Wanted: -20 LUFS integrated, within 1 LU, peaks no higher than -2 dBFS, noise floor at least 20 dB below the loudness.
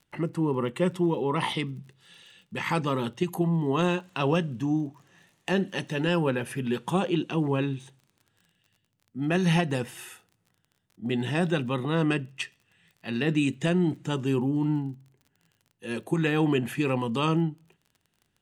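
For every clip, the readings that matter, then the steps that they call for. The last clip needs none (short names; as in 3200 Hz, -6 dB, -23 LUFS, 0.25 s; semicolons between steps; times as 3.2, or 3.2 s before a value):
ticks 32/s; loudness -27.5 LUFS; peak -12.0 dBFS; loudness target -20.0 LUFS
-> de-click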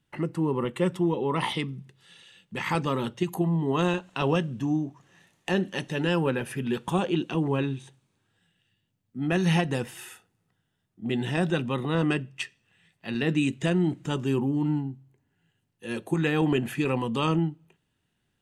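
ticks 0/s; loudness -27.5 LUFS; peak -12.0 dBFS; loudness target -20.0 LUFS
-> gain +7.5 dB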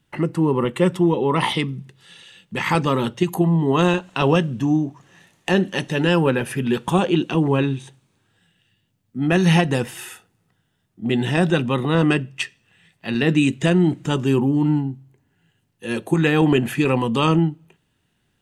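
loudness -20.0 LUFS; peak -4.5 dBFS; noise floor -69 dBFS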